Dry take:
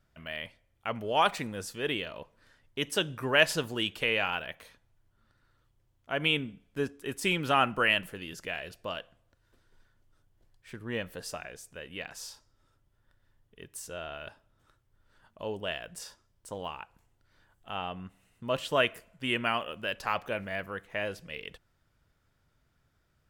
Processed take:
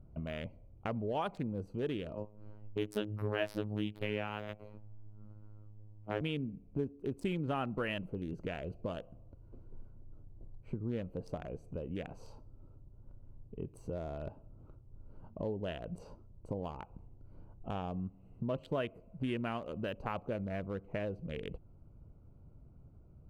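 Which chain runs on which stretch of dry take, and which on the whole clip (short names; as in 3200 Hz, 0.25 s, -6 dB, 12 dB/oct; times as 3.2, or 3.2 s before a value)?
2.15–6.21 robotiser 105 Hz + doubler 19 ms -2.5 dB
whole clip: Wiener smoothing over 25 samples; tilt shelf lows +8 dB, about 710 Hz; compressor 3:1, threshold -47 dBFS; gain +8.5 dB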